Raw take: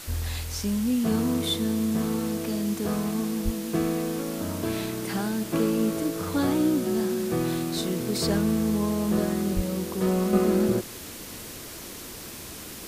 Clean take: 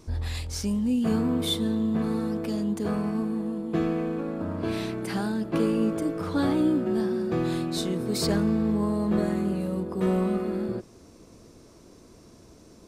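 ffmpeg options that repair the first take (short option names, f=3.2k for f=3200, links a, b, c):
-filter_complex "[0:a]asplit=3[a][b][c];[a]afade=t=out:st=3.44:d=0.02[d];[b]highpass=f=140:w=0.5412,highpass=f=140:w=1.3066,afade=t=in:st=3.44:d=0.02,afade=t=out:st=3.56:d=0.02[e];[c]afade=t=in:st=3.56:d=0.02[f];[d][e][f]amix=inputs=3:normalize=0,asplit=3[g][h][i];[g]afade=t=out:st=9.55:d=0.02[j];[h]highpass=f=140:w=0.5412,highpass=f=140:w=1.3066,afade=t=in:st=9.55:d=0.02,afade=t=out:st=9.67:d=0.02[k];[i]afade=t=in:st=9.67:d=0.02[l];[j][k][l]amix=inputs=3:normalize=0,afwtdn=0.01,asetnsamples=n=441:p=0,asendcmd='10.33 volume volume -7dB',volume=0dB"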